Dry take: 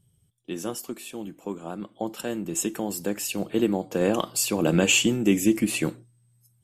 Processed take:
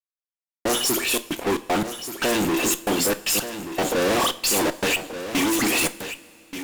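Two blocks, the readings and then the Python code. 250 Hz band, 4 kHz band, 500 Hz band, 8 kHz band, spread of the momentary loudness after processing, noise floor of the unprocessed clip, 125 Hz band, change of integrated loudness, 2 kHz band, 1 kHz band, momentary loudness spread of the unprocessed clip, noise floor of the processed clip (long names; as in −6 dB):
−1.0 dB, +5.5 dB, +2.5 dB, +4.0 dB, 9 LU, −66 dBFS, −4.0 dB, +3.0 dB, +5.5 dB, +9.0 dB, 16 LU, below −85 dBFS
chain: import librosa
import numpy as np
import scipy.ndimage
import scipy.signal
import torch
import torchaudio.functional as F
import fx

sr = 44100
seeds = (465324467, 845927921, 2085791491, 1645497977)

p1 = scipy.signal.sosfilt(scipy.signal.butter(2, 270.0, 'highpass', fs=sr, output='sos'), x)
p2 = fx.notch(p1, sr, hz=7900.0, q=14.0)
p3 = fx.rider(p2, sr, range_db=3, speed_s=0.5)
p4 = p2 + (p3 * librosa.db_to_amplitude(-0.5))
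p5 = fx.dispersion(p4, sr, late='highs', ms=116.0, hz=2700.0)
p6 = fx.step_gate(p5, sr, bpm=115, pattern='.x...xxxx.xx', floor_db=-60.0, edge_ms=4.5)
p7 = fx.fuzz(p6, sr, gain_db=42.0, gate_db=-47.0)
p8 = p7 + fx.echo_single(p7, sr, ms=1181, db=-11.0, dry=0)
p9 = fx.rev_double_slope(p8, sr, seeds[0], early_s=0.32, late_s=2.9, knee_db=-18, drr_db=10.5)
y = p9 * librosa.db_to_amplitude(-7.0)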